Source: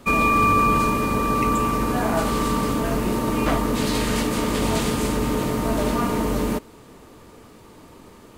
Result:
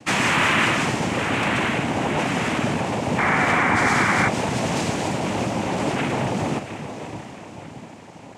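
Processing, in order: diffused feedback echo 0.654 s, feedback 48%, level -11 dB; noise vocoder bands 4; in parallel at -4 dB: soft clip -19.5 dBFS, distortion -11 dB; on the sum: painted sound noise, 3.18–4.29, 700–2400 Hz -17 dBFS; gain -4 dB

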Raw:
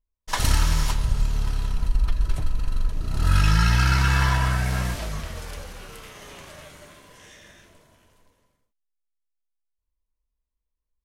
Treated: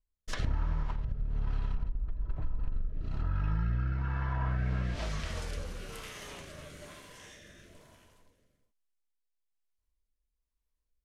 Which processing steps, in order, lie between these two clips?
treble ducked by the level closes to 1200 Hz, closed at -16.5 dBFS; compressor 5:1, threshold -27 dBFS, peak gain reduction 12 dB; rotary speaker horn 1.1 Hz

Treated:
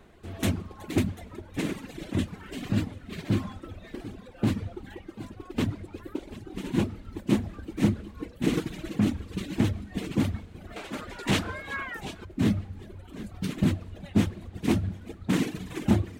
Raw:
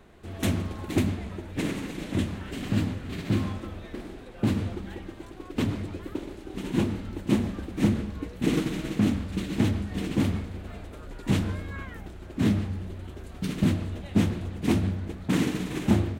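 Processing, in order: multi-head echo 0.37 s, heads first and second, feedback 48%, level -16.5 dB; 10.76–12.25 overdrive pedal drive 16 dB, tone 7100 Hz, clips at -13.5 dBFS; reverb removal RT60 1.5 s

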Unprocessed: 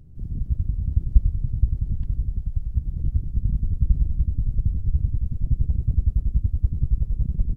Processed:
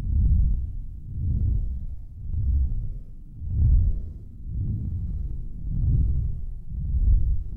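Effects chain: Paulstretch 12×, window 0.05 s, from 6.34; transient shaper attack -7 dB, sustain +2 dB; gain -2 dB

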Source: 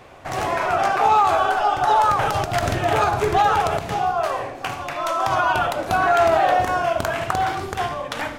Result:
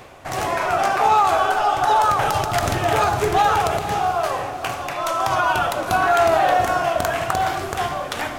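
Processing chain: reverse; upward compressor, threshold -33 dBFS; reverse; high shelf 6100 Hz +7 dB; diffused feedback echo 0.467 s, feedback 48%, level -11.5 dB

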